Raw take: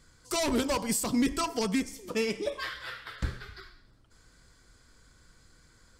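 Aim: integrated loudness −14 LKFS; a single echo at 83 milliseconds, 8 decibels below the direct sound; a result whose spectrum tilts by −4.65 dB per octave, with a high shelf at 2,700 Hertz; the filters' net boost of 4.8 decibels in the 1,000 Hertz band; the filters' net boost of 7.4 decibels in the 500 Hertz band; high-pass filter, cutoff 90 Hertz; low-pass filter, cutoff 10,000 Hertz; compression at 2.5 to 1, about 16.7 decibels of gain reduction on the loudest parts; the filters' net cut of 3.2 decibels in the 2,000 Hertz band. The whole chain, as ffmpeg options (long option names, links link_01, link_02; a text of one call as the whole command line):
ffmpeg -i in.wav -af "highpass=90,lowpass=10000,equalizer=frequency=500:width_type=o:gain=8,equalizer=frequency=1000:width_type=o:gain=5,equalizer=frequency=2000:width_type=o:gain=-3.5,highshelf=frequency=2700:gain=-5.5,acompressor=threshold=-46dB:ratio=2.5,aecho=1:1:83:0.398,volume=28.5dB" out.wav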